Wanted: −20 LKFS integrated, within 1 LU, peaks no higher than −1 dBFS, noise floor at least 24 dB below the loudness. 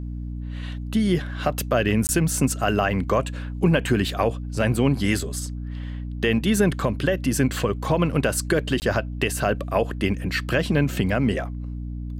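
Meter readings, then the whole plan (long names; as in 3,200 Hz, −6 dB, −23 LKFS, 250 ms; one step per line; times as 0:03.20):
number of dropouts 2; longest dropout 19 ms; mains hum 60 Hz; hum harmonics up to 300 Hz; level of the hum −28 dBFS; integrated loudness −23.5 LKFS; sample peak −8.0 dBFS; target loudness −20.0 LKFS
→ repair the gap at 0:02.07/0:08.80, 19 ms
hum removal 60 Hz, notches 5
level +3.5 dB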